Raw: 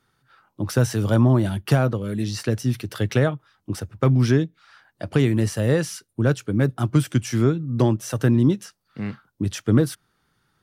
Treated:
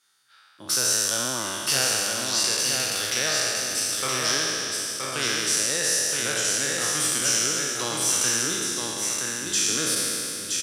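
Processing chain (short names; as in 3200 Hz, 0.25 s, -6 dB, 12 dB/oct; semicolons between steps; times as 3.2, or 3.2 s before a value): spectral trails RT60 2.95 s; band-pass 7400 Hz, Q 0.88; echo 0.971 s -3.5 dB; gain +8.5 dB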